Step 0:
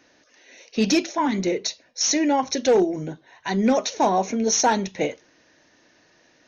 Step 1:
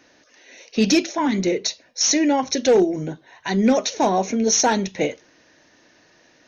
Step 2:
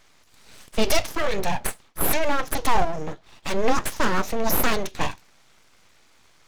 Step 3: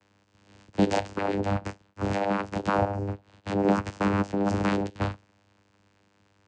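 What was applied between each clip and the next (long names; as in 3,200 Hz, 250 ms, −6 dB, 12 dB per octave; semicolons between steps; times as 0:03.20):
dynamic equaliser 950 Hz, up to −4 dB, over −35 dBFS, Q 1.3; level +3 dB
full-wave rectification
channel vocoder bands 8, saw 99.8 Hz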